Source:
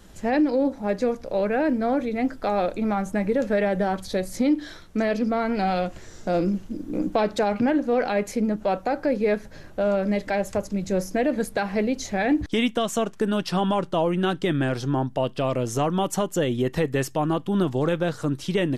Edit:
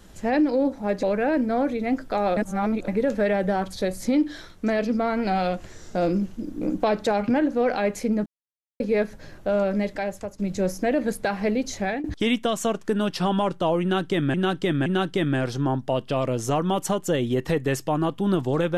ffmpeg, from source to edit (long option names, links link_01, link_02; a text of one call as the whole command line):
ffmpeg -i in.wav -filter_complex "[0:a]asplit=10[link_01][link_02][link_03][link_04][link_05][link_06][link_07][link_08][link_09][link_10];[link_01]atrim=end=1.032[link_11];[link_02]atrim=start=1.348:end=2.692[link_12];[link_03]atrim=start=2.688:end=3.202,asetpts=PTS-STARTPTS,areverse[link_13];[link_04]atrim=start=3.198:end=8.58,asetpts=PTS-STARTPTS,afade=type=out:start_time=5.378:duration=0.004:curve=hsin[link_14];[link_05]atrim=start=8.58:end=9.12,asetpts=PTS-STARTPTS,volume=0[link_15];[link_06]atrim=start=9.12:end=10.71,asetpts=PTS-STARTPTS,afade=type=in:duration=0.004:curve=hsin,afade=type=out:start_time=0.92:duration=0.67:silence=0.281838[link_16];[link_07]atrim=start=10.71:end=12.36,asetpts=PTS-STARTPTS,afade=type=in:duration=0.004:curve=hsin:silence=0.281838,afade=type=out:start_time=1.38:duration=0.27:curve=qsin:silence=0.0891251[link_17];[link_08]atrim=start=12.36:end=14.662,asetpts=PTS-STARTPTS,afade=type=in:duration=0.004:curve=hsin:silence=0.0891251[link_18];[link_09]atrim=start=14.138:end=14.662[link_19];[link_10]atrim=start=14.138[link_20];[link_11][link_12]acrossfade=duration=0.004:curve1=hsin:curve2=hsin[link_21];[link_21][link_13]acrossfade=duration=0.004:curve1=hsin:curve2=hsin[link_22];[link_14][link_15][link_16][link_17][link_18]concat=n=5:v=0:a=1[link_23];[link_22][link_23]acrossfade=duration=0.004:curve1=hsin:curve2=hsin[link_24];[link_24][link_19]acrossfade=duration=0.004:curve1=hsin:curve2=hsin[link_25];[link_25][link_20]acrossfade=duration=0.004:curve1=hsin:curve2=hsin" out.wav